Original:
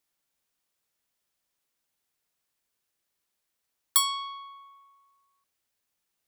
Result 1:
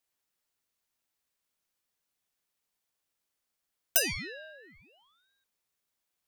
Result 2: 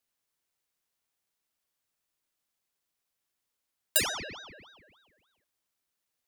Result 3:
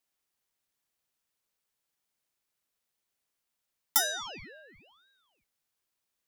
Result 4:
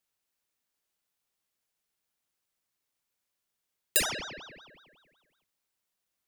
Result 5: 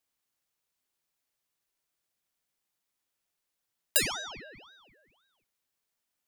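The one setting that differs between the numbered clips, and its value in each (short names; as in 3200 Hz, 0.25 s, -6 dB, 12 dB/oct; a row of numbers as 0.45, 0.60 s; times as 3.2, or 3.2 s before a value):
ring modulator with a swept carrier, at: 0.56, 3.4, 0.98, 5.4, 1.9 Hz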